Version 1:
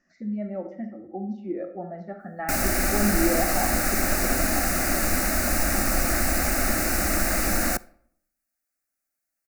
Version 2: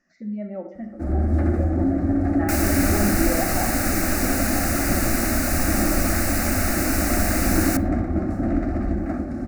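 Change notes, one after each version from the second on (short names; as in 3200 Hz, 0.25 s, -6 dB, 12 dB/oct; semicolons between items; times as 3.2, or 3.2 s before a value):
first sound: unmuted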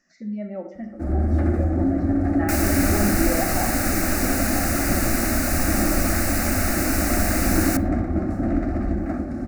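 speech: add high shelf 3700 Hz +11 dB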